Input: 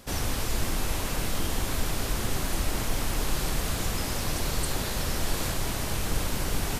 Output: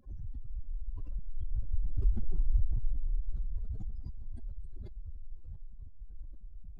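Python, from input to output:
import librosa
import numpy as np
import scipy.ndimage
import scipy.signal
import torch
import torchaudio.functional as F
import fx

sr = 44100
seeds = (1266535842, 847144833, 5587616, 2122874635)

y = fx.spec_expand(x, sr, power=3.5)
y = fx.doppler_pass(y, sr, speed_mps=9, closest_m=4.2, pass_at_s=2.32)
y = y * librosa.db_to_amplitude(4.5)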